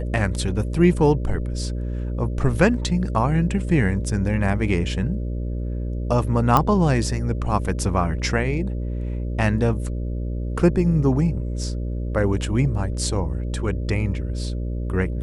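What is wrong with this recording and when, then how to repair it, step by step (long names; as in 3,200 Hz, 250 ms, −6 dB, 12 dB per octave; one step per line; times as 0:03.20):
mains buzz 60 Hz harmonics 10 −26 dBFS
0:06.57: click −5 dBFS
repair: click removal
hum removal 60 Hz, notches 10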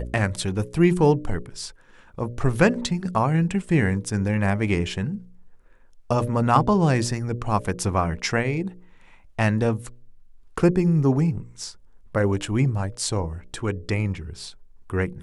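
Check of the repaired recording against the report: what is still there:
none of them is left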